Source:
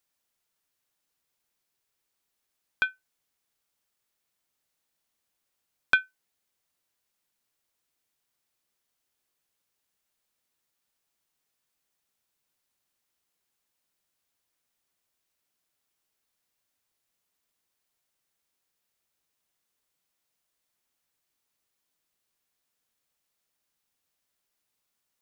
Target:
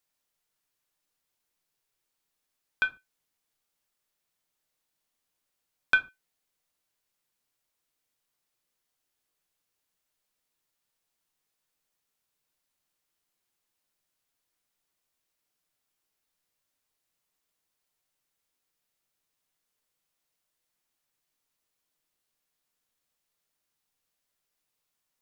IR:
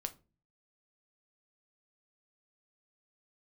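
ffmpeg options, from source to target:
-filter_complex "[1:a]atrim=start_sample=2205,atrim=end_sample=6615,asetrate=42336,aresample=44100[link_01];[0:a][link_01]afir=irnorm=-1:irlink=0"

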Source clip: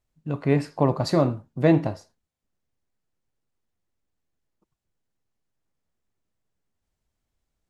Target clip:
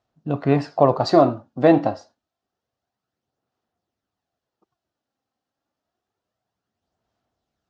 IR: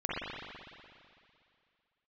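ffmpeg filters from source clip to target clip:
-af "highpass=120,equalizer=frequency=160:width_type=q:width=4:gain=-5,equalizer=frequency=710:width_type=q:width=4:gain=9,equalizer=frequency=1300:width_type=q:width=4:gain=4,equalizer=frequency=2200:width_type=q:width=4:gain=-6,lowpass=frequency=5900:width=0.5412,lowpass=frequency=5900:width=1.3066,aphaser=in_gain=1:out_gain=1:delay=3.8:decay=0.35:speed=0.28:type=sinusoidal,volume=3.5dB"

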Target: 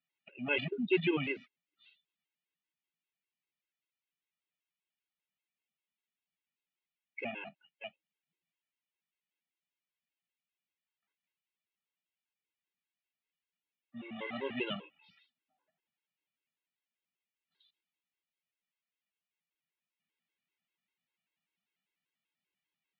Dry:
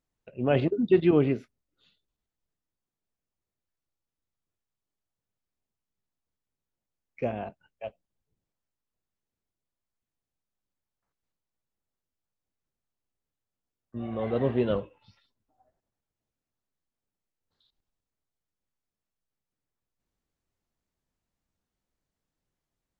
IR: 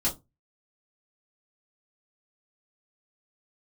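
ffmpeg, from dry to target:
-af "aexciter=amount=14.2:drive=3.4:freq=2000,highpass=frequency=160:width=0.5412,highpass=frequency=160:width=1.3066,equalizer=frequency=170:width_type=q:width=4:gain=6,equalizer=frequency=520:width_type=q:width=4:gain=-5,equalizer=frequency=900:width_type=q:width=4:gain=5,equalizer=frequency=1300:width_type=q:width=4:gain=9,lowpass=frequency=2700:width=0.5412,lowpass=frequency=2700:width=1.3066,afftfilt=real='re*gt(sin(2*PI*5.1*pts/sr)*(1-2*mod(floor(b*sr/1024/280),2)),0)':imag='im*gt(sin(2*PI*5.1*pts/sr)*(1-2*mod(floor(b*sr/1024/280),2)),0)':win_size=1024:overlap=0.75,volume=-8.5dB"

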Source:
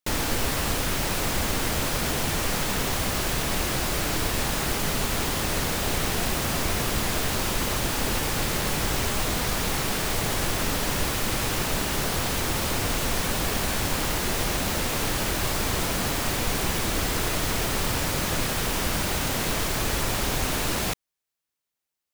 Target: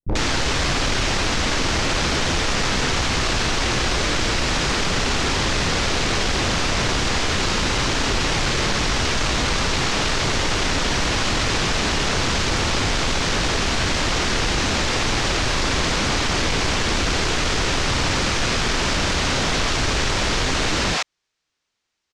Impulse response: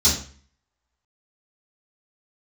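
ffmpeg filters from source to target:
-filter_complex "[0:a]asplit=2[link_01][link_02];[link_02]alimiter=limit=-23dB:level=0:latency=1,volume=-2dB[link_03];[link_01][link_03]amix=inputs=2:normalize=0,acrossover=split=170|650[link_04][link_05][link_06];[link_05]adelay=30[link_07];[link_06]adelay=90[link_08];[link_04][link_07][link_08]amix=inputs=3:normalize=0,aeval=exprs='0.0841*(abs(mod(val(0)/0.0841+3,4)-2)-1)':channel_layout=same,lowpass=frequency=6400:width=0.5412,lowpass=frequency=6400:width=1.3066,volume=7.5dB"

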